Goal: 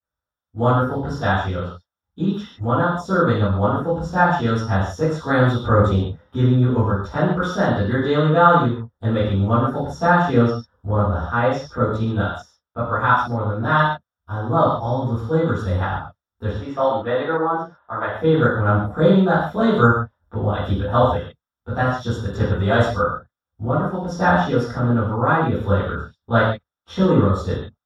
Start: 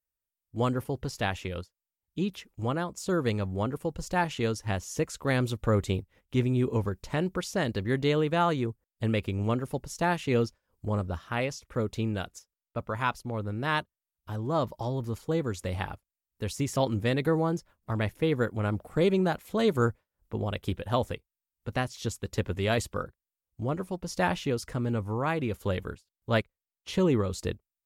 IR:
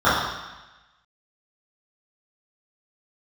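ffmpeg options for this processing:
-filter_complex "[0:a]asettb=1/sr,asplit=3[s0][s1][s2];[s0]atrim=end=16.494[s3];[s1]atrim=start=16.49:end=18.13,asetpts=PTS-STARTPTS,afade=t=in:d=0.004:c=qsin,afade=t=out:st=1.636:d=0.004:c=qsin,acrossover=split=370 3500:gain=0.158 1 0.0794[s4][s5][s6];[s4][s5][s6]amix=inputs=3:normalize=0[s7];[s2]atrim=start=18.126[s8];[s3][s7]acrossfade=d=0.004:c1=hsin:c2=qsin[s9];[s9][s8]acrossfade=d=0.004:c1=qsin:c2=hsin[s10];[1:a]atrim=start_sample=2205,afade=t=out:st=0.22:d=0.01,atrim=end_sample=10143[s11];[s10][s11]afir=irnorm=-1:irlink=0,volume=0.224"

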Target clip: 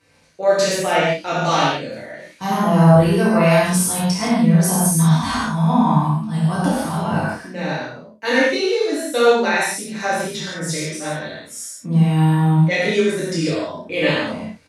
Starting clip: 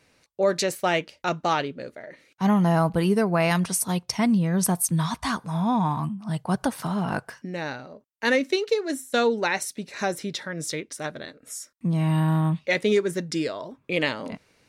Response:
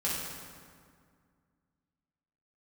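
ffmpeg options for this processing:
-filter_complex "[0:a]asettb=1/sr,asplit=3[s0][s1][s2];[s0]atrim=end=1.344[s3];[s1]atrim=start=1.34:end=2.54,asetpts=PTS-STARTPTS,afade=t=in:d=0.004:c=qsin,afade=t=out:st=1.196:d=0.004:c=qsin,highshelf=f=3500:g=8.5[s4];[s2]atrim=start=2.536[s5];[s3][s4]acrossfade=d=0.004:c1=hsin:c2=qsin[s6];[s6][s5]acrossfade=d=0.004:c1=qsin:c2=hsin,aecho=1:1:32|55:0.631|0.355[s7];[1:a]atrim=start_sample=2205,atrim=end_sample=4410,asetrate=25578,aresample=44100[s8];[s7][s8]afir=irnorm=-1:irlink=0,volume=0.596"

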